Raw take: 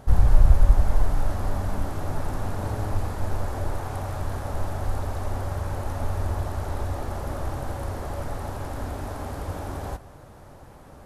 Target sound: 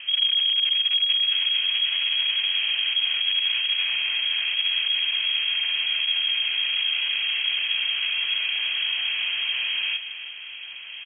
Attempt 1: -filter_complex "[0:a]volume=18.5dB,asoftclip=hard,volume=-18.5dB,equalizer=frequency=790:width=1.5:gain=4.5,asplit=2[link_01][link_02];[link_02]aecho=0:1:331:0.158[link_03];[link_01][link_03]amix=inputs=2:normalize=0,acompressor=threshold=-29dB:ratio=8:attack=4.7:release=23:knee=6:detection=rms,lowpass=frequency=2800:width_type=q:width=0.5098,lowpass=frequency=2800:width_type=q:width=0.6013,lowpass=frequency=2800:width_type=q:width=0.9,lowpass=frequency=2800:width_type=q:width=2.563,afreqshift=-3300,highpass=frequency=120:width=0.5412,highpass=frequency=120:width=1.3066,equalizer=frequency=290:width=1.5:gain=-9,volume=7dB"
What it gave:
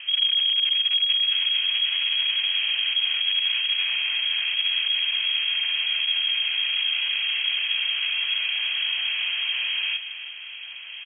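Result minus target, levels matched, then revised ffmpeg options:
250 Hz band −6.5 dB; 125 Hz band −4.5 dB
-filter_complex "[0:a]volume=18.5dB,asoftclip=hard,volume=-18.5dB,equalizer=frequency=790:width=1.5:gain=4.5,asplit=2[link_01][link_02];[link_02]aecho=0:1:331:0.158[link_03];[link_01][link_03]amix=inputs=2:normalize=0,acompressor=threshold=-29dB:ratio=8:attack=4.7:release=23:knee=6:detection=rms,lowpass=frequency=2800:width_type=q:width=0.5098,lowpass=frequency=2800:width_type=q:width=0.6013,lowpass=frequency=2800:width_type=q:width=0.9,lowpass=frequency=2800:width_type=q:width=2.563,afreqshift=-3300,volume=7dB"

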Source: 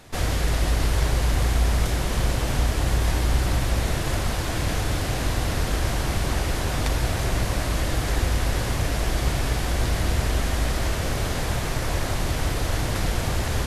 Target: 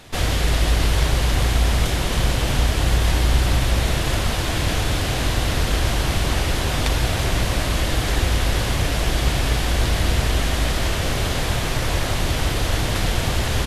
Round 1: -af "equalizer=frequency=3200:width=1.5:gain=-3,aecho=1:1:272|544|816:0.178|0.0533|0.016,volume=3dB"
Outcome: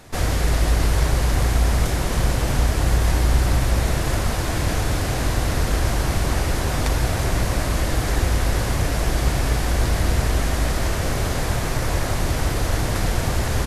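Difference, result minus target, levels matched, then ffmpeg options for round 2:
4,000 Hz band −5.0 dB
-af "equalizer=frequency=3200:width=1.5:gain=5,aecho=1:1:272|544|816:0.178|0.0533|0.016,volume=3dB"

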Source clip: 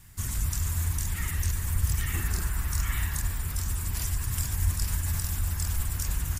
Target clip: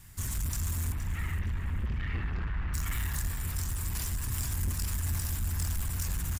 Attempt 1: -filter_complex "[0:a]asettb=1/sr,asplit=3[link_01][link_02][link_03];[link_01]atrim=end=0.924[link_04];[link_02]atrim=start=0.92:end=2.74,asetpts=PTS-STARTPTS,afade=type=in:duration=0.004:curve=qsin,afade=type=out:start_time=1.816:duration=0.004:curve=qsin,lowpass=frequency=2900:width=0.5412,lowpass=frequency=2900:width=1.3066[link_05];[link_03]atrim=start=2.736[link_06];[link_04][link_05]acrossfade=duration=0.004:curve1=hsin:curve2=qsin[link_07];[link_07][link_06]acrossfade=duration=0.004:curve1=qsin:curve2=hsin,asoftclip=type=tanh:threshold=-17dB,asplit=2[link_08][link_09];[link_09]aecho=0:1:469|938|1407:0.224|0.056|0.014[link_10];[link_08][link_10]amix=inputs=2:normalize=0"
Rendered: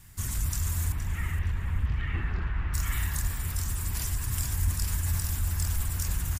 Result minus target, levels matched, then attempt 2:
soft clipping: distortion −12 dB
-filter_complex "[0:a]asettb=1/sr,asplit=3[link_01][link_02][link_03];[link_01]atrim=end=0.924[link_04];[link_02]atrim=start=0.92:end=2.74,asetpts=PTS-STARTPTS,afade=type=in:duration=0.004:curve=qsin,afade=type=out:start_time=1.816:duration=0.004:curve=qsin,lowpass=frequency=2900:width=0.5412,lowpass=frequency=2900:width=1.3066[link_05];[link_03]atrim=start=2.736[link_06];[link_04][link_05]acrossfade=duration=0.004:curve1=hsin:curve2=qsin[link_07];[link_07][link_06]acrossfade=duration=0.004:curve1=qsin:curve2=hsin,asoftclip=type=tanh:threshold=-27dB,asplit=2[link_08][link_09];[link_09]aecho=0:1:469|938|1407:0.224|0.056|0.014[link_10];[link_08][link_10]amix=inputs=2:normalize=0"

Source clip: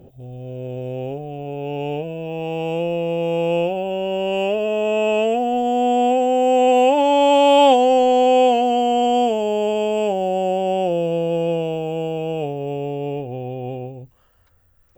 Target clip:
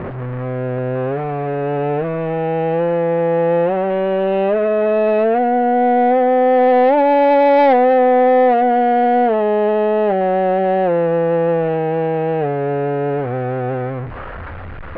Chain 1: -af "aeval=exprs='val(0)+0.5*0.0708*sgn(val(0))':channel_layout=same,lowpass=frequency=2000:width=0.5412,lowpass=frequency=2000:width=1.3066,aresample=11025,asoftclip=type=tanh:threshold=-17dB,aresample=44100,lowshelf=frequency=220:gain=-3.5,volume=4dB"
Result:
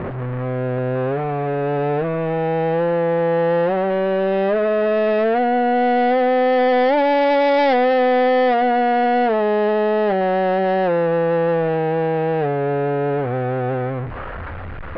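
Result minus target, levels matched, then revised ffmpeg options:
soft clipping: distortion +7 dB
-af "aeval=exprs='val(0)+0.5*0.0708*sgn(val(0))':channel_layout=same,lowpass=frequency=2000:width=0.5412,lowpass=frequency=2000:width=1.3066,aresample=11025,asoftclip=type=tanh:threshold=-10.5dB,aresample=44100,lowshelf=frequency=220:gain=-3.5,volume=4dB"

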